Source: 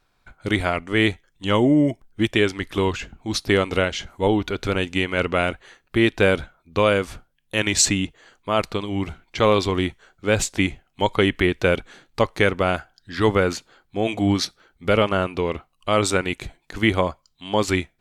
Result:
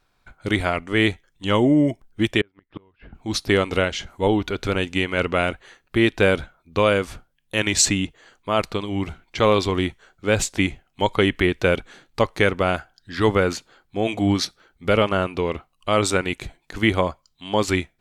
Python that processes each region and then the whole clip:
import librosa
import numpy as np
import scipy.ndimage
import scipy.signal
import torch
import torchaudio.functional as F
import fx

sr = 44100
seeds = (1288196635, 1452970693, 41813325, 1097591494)

y = fx.chain(x, sr, fx.lowpass(hz=2100.0, slope=12),
    fx.gate_flip(shuts_db=-19.0, range_db=-36),
    fx.resample_bad(factor=4, down='none', up='filtered'), at=(2.41, 3.15))